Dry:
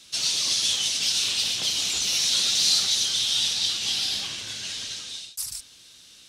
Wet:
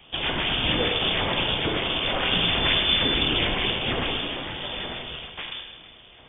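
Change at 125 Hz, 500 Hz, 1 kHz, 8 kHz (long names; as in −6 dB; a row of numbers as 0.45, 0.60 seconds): +16.0 dB, +19.0 dB, +15.0 dB, below −40 dB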